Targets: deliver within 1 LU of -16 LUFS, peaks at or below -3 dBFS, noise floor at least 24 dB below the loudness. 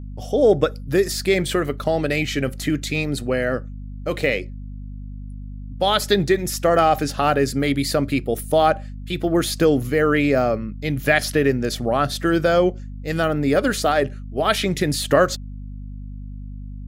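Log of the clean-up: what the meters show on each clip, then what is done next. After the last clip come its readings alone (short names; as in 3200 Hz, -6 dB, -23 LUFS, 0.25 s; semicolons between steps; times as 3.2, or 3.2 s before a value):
hum 50 Hz; harmonics up to 250 Hz; hum level -30 dBFS; loudness -20.5 LUFS; peak -3.0 dBFS; loudness target -16.0 LUFS
-> notches 50/100/150/200/250 Hz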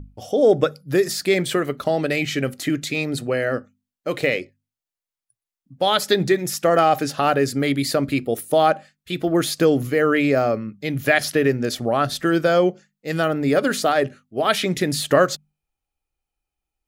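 hum none; loudness -20.5 LUFS; peak -3.5 dBFS; loudness target -16.0 LUFS
-> gain +4.5 dB; limiter -3 dBFS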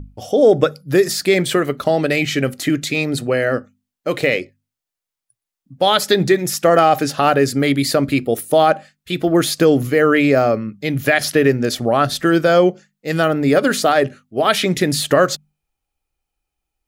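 loudness -16.5 LUFS; peak -3.0 dBFS; noise floor -85 dBFS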